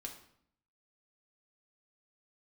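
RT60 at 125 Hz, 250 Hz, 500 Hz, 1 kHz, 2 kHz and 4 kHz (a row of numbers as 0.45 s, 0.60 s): 0.85 s, 0.85 s, 0.65 s, 0.65 s, 0.60 s, 0.55 s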